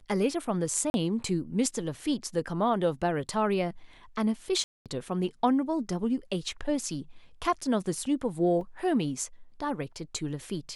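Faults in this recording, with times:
0.90–0.94 s: dropout 41 ms
4.64–4.86 s: dropout 217 ms
8.61 s: dropout 2.9 ms

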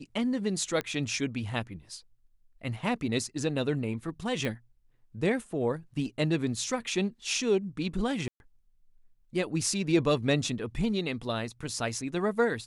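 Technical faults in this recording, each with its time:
0.81 s: pop -18 dBFS
4.45 s: pop -19 dBFS
8.28–8.40 s: dropout 121 ms

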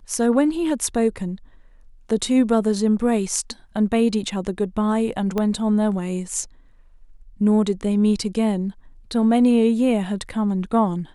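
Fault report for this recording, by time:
5.38 s: pop -11 dBFS

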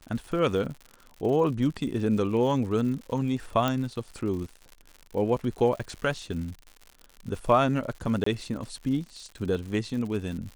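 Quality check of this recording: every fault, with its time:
crackle 110 per s -36 dBFS
3.68 s: pop -13 dBFS
8.24–8.26 s: dropout 24 ms

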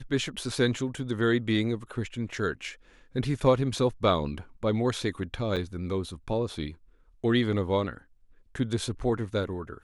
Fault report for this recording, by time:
5.56–5.57 s: dropout 6.9 ms

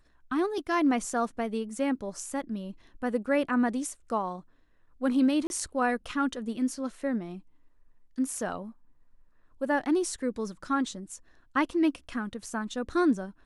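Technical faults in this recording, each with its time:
5.47–5.50 s: dropout 31 ms

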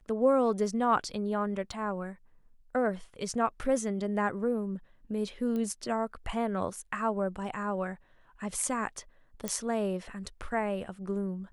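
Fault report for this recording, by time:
1.72 s: dropout 2.8 ms
5.56 s: pop -24 dBFS
9.48 s: pop -15 dBFS

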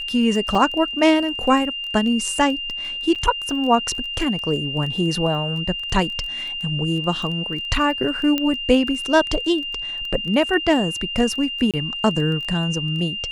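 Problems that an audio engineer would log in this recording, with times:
crackle 15 per s -28 dBFS
whine 2.8 kHz -26 dBFS
0.55 s: dropout 2.8 ms
3.15–3.16 s: dropout 6.6 ms
8.38 s: pop -8 dBFS
11.71–11.74 s: dropout 27 ms

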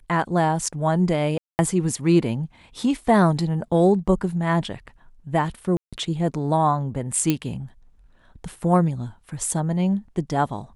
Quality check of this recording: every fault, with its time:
1.38–1.59 s: dropout 209 ms
5.77–5.93 s: dropout 156 ms
7.30 s: pop -7 dBFS

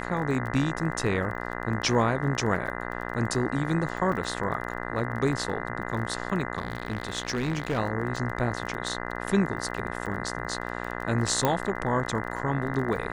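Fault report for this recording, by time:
buzz 60 Hz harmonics 34 -34 dBFS
crackle 21 per s -34 dBFS
4.12 s: dropout 3.6 ms
6.57–7.79 s: clipped -23 dBFS
11.45 s: pop -9 dBFS

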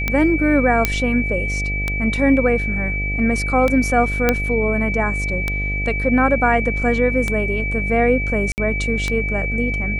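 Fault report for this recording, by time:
buzz 50 Hz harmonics 15 -24 dBFS
tick -6 dBFS
whine 2.3 kHz -23 dBFS
0.85 s: pop -1 dBFS
4.29 s: pop -1 dBFS
8.52–8.58 s: dropout 59 ms

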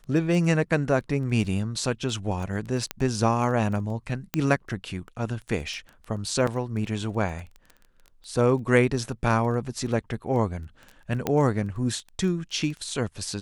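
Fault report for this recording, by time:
crackle 11 per s -33 dBFS
2.91 s: pop -12 dBFS
4.34 s: pop -10 dBFS
6.47 s: dropout 4.3 ms
11.27 s: pop -11 dBFS

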